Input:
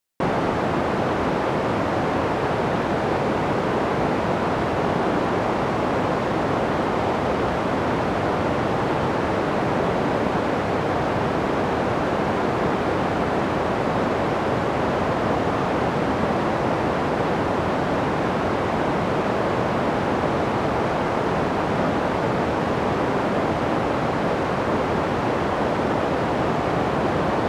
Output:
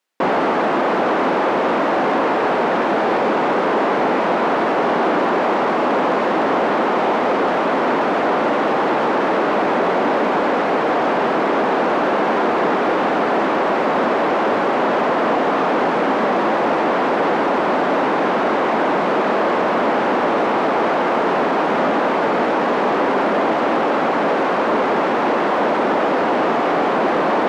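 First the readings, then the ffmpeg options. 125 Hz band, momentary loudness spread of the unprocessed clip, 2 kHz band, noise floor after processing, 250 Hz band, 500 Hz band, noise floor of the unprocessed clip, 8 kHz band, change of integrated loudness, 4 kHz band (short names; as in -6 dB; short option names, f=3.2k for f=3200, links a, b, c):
-8.0 dB, 1 LU, +6.0 dB, -18 dBFS, +3.0 dB, +5.5 dB, -24 dBFS, n/a, +5.0 dB, +4.0 dB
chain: -filter_complex "[0:a]asplit=2[a][b];[b]highpass=f=720:p=1,volume=19dB,asoftclip=type=tanh:threshold=-6.5dB[c];[a][c]amix=inputs=2:normalize=0,lowpass=f=1.8k:p=1,volume=-6dB,lowshelf=f=150:t=q:w=1.5:g=-13,volume=-1.5dB"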